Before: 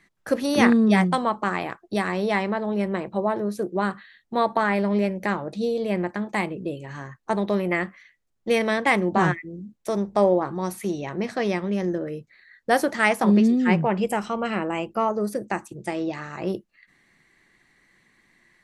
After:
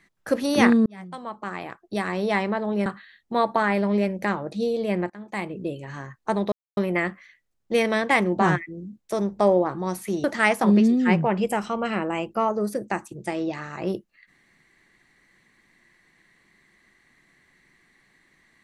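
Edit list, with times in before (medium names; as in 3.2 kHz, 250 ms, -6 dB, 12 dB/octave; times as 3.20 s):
0.86–2.35 s: fade in
2.86–3.87 s: delete
6.11–6.65 s: fade in, from -19 dB
7.53 s: insert silence 0.25 s
11.00–12.84 s: delete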